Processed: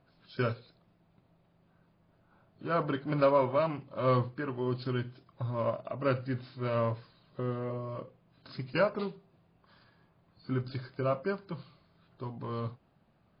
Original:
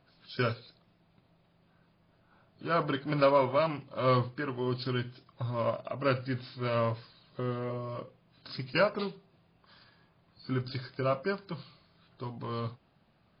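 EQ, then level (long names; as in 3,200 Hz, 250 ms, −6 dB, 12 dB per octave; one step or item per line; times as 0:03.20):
high-shelf EQ 2,300 Hz −9.5 dB
0.0 dB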